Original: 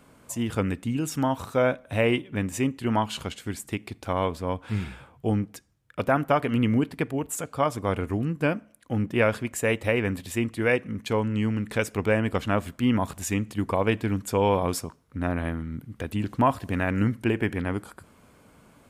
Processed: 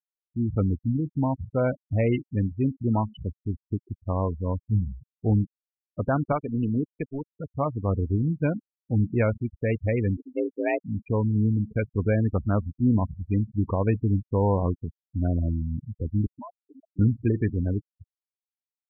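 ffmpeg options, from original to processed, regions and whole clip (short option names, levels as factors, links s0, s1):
-filter_complex "[0:a]asettb=1/sr,asplit=3[s0][s1][s2];[s0]atrim=end=6.324[s3];[s1]atrim=start=6.32:end=7.3,asetpts=PTS-STARTPTS,afade=t=in:d=0.004:c=qsin,afade=t=out:st=0.976:d=0.004:c=qsin,highpass=f=210:p=1,aemphasis=mode=production:type=cd,aeval=exprs='sgn(val(0))*max(abs(val(0))-0.0075,0)':c=same[s4];[s2]atrim=start=7.296[s5];[s3][s4]acrossfade=d=0.004:c1=hsin:c2=qsin[s6];[s6][s5]acrossfade=d=0.004:c1=qsin:c2=hsin,asettb=1/sr,asplit=3[s7][s8][s9];[s7]atrim=end=10.174[s10];[s8]atrim=start=10.17:end=10.8,asetpts=PTS-STARTPTS,afade=t=in:d=0.004:c=qsin,afade=t=out:st=0.626:d=0.004:c=qsin,lowshelf=f=69:g=10,afreqshift=170,aeval=exprs='sgn(val(0))*max(abs(val(0))-0.00376,0)':c=same[s11];[s9]atrim=start=10.796[s12];[s10][s11]acrossfade=d=0.004:c1=hsin:c2=qsin[s13];[s13][s12]acrossfade=d=0.004:c1=qsin:c2=hsin,asettb=1/sr,asplit=3[s14][s15][s16];[s14]atrim=end=16.264[s17];[s15]atrim=start=16.26:end=16.99,asetpts=PTS-STARTPTS,afade=t=in:d=0.004:c=qsin,afade=t=out:st=0.726:d=0.004:c=qsin,highpass=430,acompressor=threshold=0.0141:ratio=2.5:attack=3.2:release=140:knee=1:detection=peak[s18];[s16]atrim=start=16.986[s19];[s17][s18]acrossfade=d=0.004:c1=hsin:c2=qsin[s20];[s20][s19]acrossfade=d=0.004:c1=qsin:c2=hsin,aemphasis=mode=reproduction:type=bsi,afftfilt=real='re*gte(hypot(re,im),0.1)':imag='im*gte(hypot(re,im),0.1)':win_size=1024:overlap=0.75,volume=0.631"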